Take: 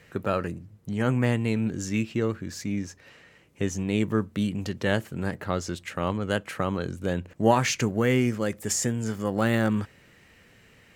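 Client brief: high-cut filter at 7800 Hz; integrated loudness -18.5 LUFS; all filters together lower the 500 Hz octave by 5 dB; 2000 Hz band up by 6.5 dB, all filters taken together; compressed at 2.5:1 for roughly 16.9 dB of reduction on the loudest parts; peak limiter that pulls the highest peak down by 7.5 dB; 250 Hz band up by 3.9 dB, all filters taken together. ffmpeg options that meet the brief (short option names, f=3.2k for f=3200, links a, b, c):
-af "lowpass=7.8k,equalizer=f=250:t=o:g=6.5,equalizer=f=500:t=o:g=-9,equalizer=f=2k:t=o:g=8.5,acompressor=threshold=-42dB:ratio=2.5,volume=22.5dB,alimiter=limit=-6dB:level=0:latency=1"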